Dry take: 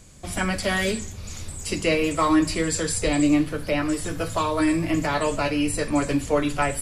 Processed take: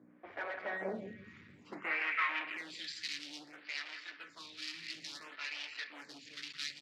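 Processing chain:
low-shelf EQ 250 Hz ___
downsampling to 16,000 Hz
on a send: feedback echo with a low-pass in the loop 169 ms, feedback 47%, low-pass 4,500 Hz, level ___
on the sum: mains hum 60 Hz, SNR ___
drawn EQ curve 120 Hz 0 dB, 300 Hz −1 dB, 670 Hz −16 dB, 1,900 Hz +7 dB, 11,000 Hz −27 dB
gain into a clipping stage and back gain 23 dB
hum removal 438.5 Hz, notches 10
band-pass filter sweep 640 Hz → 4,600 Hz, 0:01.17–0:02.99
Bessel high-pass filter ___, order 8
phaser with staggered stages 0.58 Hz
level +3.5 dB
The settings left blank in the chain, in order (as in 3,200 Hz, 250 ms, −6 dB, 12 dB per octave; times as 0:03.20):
+6 dB, −10 dB, 17 dB, 160 Hz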